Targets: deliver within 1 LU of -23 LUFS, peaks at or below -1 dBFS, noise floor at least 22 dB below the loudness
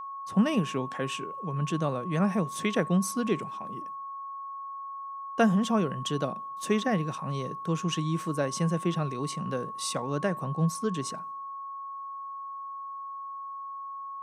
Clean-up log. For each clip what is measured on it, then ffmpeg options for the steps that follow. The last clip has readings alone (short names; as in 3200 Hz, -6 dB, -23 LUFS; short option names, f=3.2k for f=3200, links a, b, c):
steady tone 1100 Hz; tone level -36 dBFS; loudness -30.5 LUFS; peak -10.0 dBFS; loudness target -23.0 LUFS
-> -af "bandreject=f=1.1k:w=30"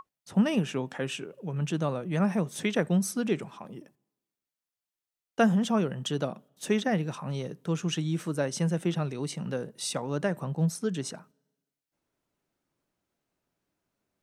steady tone none; loudness -30.0 LUFS; peak -10.5 dBFS; loudness target -23.0 LUFS
-> -af "volume=7dB"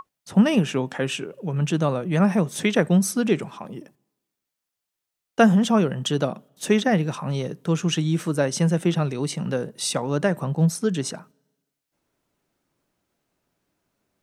loudness -23.0 LUFS; peak -3.5 dBFS; noise floor -84 dBFS